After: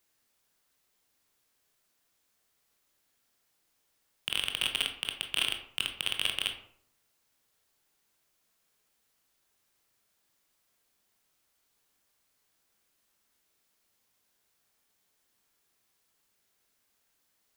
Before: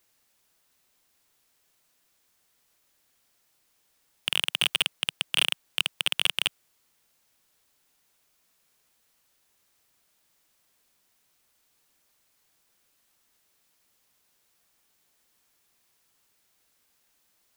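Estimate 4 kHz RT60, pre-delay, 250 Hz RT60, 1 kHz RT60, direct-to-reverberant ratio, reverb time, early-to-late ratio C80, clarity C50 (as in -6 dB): 0.35 s, 18 ms, 0.70 s, 0.60 s, 4.0 dB, 0.60 s, 11.5 dB, 8.5 dB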